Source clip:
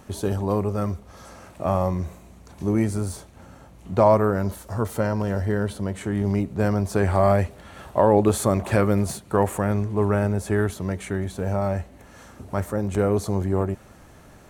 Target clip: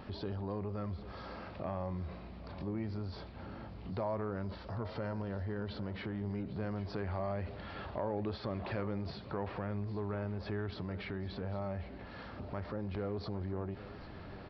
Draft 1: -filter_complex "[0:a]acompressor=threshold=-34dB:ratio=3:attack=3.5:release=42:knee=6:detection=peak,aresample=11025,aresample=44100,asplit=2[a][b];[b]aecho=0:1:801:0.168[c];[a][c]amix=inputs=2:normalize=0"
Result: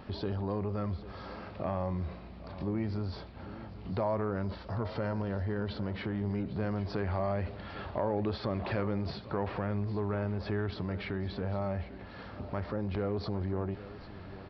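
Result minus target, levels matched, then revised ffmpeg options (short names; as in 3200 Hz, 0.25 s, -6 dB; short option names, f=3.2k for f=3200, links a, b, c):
compressor: peak gain reduction -5 dB
-filter_complex "[0:a]acompressor=threshold=-41.5dB:ratio=3:attack=3.5:release=42:knee=6:detection=peak,aresample=11025,aresample=44100,asplit=2[a][b];[b]aecho=0:1:801:0.168[c];[a][c]amix=inputs=2:normalize=0"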